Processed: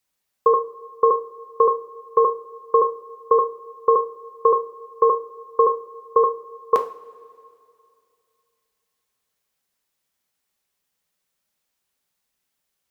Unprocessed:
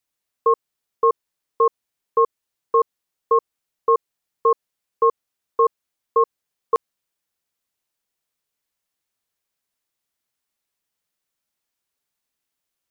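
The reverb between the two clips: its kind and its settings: two-slope reverb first 0.45 s, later 2.6 s, from -19 dB, DRR 5 dB; trim +3 dB

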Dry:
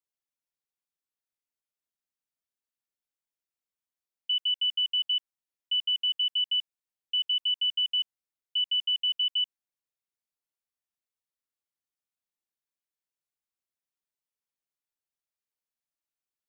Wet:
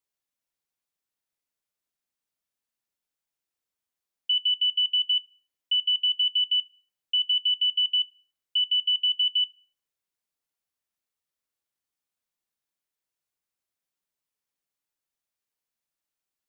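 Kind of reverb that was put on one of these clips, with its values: plate-style reverb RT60 1.7 s, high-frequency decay 0.25×, DRR 16.5 dB; trim +4 dB

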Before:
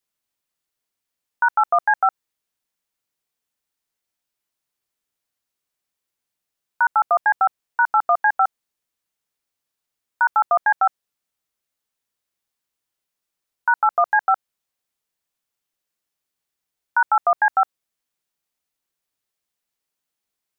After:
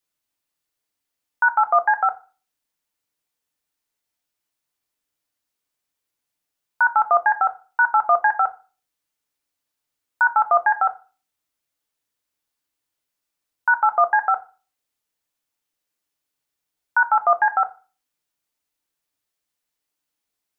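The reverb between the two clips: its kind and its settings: FDN reverb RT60 0.35 s, low-frequency decay 1.05×, high-frequency decay 0.9×, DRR 7.5 dB

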